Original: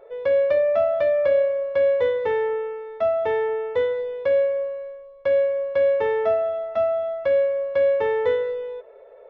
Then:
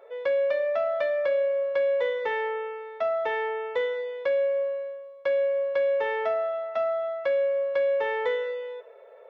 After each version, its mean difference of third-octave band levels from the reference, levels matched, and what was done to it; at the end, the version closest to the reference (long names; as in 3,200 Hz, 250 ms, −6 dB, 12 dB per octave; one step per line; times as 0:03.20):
3.0 dB: high-pass filter 890 Hz 6 dB per octave
reverb whose tail is shaped and stops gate 170 ms falling, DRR 10 dB
downward compressor 3 to 1, threshold −25 dBFS, peak gain reduction 5 dB
level +2 dB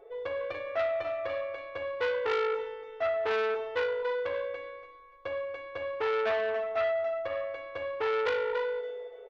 6.0 dB: comb filter 2.6 ms, depth 94%
on a send: feedback echo with a high-pass in the loop 288 ms, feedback 27%, high-pass 430 Hz, level −4 dB
on the sum: saturating transformer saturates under 1,800 Hz
level −7 dB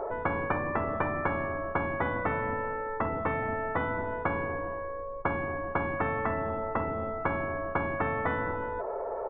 12.5 dB: low-pass filter 1,200 Hz 24 dB per octave
double-tracking delay 13 ms −13.5 dB
every bin compressed towards the loudest bin 10 to 1
level −1.5 dB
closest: first